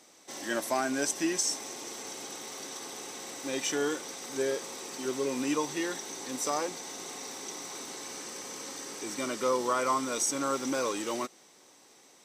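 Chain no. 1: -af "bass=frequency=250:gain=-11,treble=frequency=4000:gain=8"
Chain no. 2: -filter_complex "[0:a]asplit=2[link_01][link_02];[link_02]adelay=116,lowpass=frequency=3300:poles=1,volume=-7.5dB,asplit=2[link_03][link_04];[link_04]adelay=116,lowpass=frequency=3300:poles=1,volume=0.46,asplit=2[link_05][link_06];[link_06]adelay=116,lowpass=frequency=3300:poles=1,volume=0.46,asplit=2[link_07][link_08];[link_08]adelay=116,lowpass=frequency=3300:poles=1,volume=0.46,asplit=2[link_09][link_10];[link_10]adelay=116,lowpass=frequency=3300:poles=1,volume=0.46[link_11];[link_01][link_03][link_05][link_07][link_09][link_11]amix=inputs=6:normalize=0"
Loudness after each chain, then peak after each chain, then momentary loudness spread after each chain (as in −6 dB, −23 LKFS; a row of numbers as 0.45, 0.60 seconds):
−29.5, −32.0 LKFS; −10.0, −16.0 dBFS; 11, 11 LU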